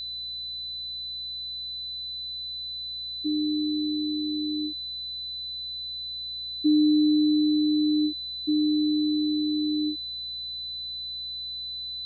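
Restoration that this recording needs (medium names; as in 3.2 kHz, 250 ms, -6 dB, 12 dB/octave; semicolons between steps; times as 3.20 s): de-hum 59.7 Hz, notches 12; band-stop 4 kHz, Q 30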